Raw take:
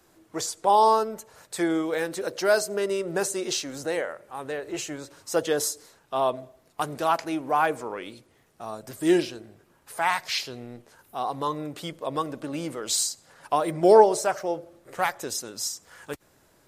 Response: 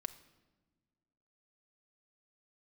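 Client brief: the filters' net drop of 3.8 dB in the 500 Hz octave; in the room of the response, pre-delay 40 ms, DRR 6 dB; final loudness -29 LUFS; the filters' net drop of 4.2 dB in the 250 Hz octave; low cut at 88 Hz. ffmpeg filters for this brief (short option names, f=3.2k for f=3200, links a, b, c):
-filter_complex "[0:a]highpass=88,equalizer=f=250:t=o:g=-4.5,equalizer=f=500:t=o:g=-3.5,asplit=2[a][b];[1:a]atrim=start_sample=2205,adelay=40[c];[b][c]afir=irnorm=-1:irlink=0,volume=-3.5dB[d];[a][d]amix=inputs=2:normalize=0,volume=-2dB"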